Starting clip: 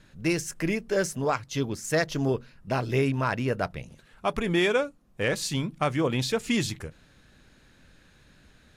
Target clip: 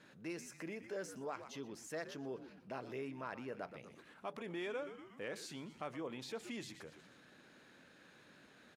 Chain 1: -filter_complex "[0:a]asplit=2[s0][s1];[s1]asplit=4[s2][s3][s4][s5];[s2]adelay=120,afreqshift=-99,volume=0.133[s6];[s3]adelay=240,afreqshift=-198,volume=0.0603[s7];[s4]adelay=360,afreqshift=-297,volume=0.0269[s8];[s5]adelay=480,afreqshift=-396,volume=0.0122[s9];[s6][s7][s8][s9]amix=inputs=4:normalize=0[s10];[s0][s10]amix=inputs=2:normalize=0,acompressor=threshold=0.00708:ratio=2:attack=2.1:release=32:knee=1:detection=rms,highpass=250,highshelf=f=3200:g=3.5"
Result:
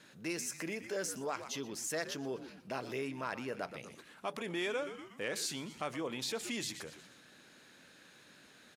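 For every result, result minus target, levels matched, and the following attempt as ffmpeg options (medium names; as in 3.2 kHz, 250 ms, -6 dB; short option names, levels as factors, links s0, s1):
8 kHz band +7.0 dB; compression: peak gain reduction -5 dB
-filter_complex "[0:a]asplit=2[s0][s1];[s1]asplit=4[s2][s3][s4][s5];[s2]adelay=120,afreqshift=-99,volume=0.133[s6];[s3]adelay=240,afreqshift=-198,volume=0.0603[s7];[s4]adelay=360,afreqshift=-297,volume=0.0269[s8];[s5]adelay=480,afreqshift=-396,volume=0.0122[s9];[s6][s7][s8][s9]amix=inputs=4:normalize=0[s10];[s0][s10]amix=inputs=2:normalize=0,acompressor=threshold=0.00708:ratio=2:attack=2.1:release=32:knee=1:detection=rms,highpass=250,highshelf=f=3200:g=-7.5"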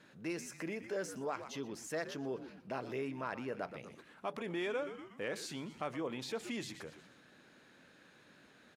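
compression: peak gain reduction -5 dB
-filter_complex "[0:a]asplit=2[s0][s1];[s1]asplit=4[s2][s3][s4][s5];[s2]adelay=120,afreqshift=-99,volume=0.133[s6];[s3]adelay=240,afreqshift=-198,volume=0.0603[s7];[s4]adelay=360,afreqshift=-297,volume=0.0269[s8];[s5]adelay=480,afreqshift=-396,volume=0.0122[s9];[s6][s7][s8][s9]amix=inputs=4:normalize=0[s10];[s0][s10]amix=inputs=2:normalize=0,acompressor=threshold=0.00237:ratio=2:attack=2.1:release=32:knee=1:detection=rms,highpass=250,highshelf=f=3200:g=-7.5"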